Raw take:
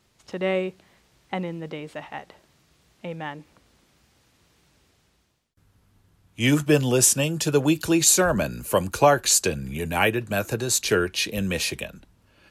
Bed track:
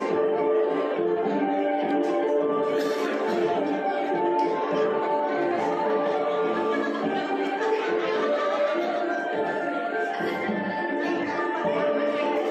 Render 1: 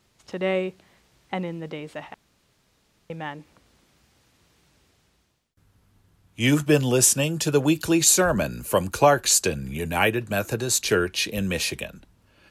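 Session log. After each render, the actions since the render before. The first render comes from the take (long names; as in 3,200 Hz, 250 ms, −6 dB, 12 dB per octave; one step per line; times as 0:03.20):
0:02.14–0:03.10: fill with room tone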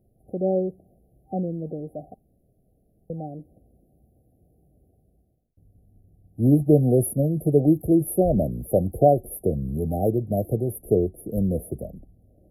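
spectral tilt −1.5 dB per octave
brick-wall band-stop 780–9,800 Hz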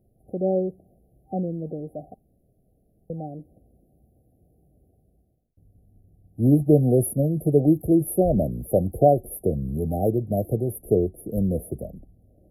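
no processing that can be heard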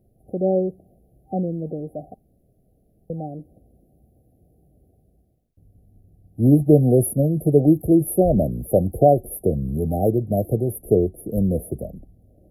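level +3 dB
brickwall limiter −2 dBFS, peak gain reduction 1.5 dB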